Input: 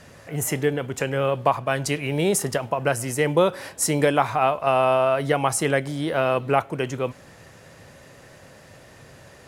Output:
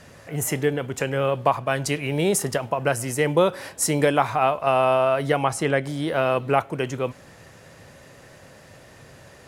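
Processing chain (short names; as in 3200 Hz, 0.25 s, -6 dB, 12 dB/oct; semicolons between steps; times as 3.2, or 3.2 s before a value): 5.44–5.84 high shelf 7200 Hz -11.5 dB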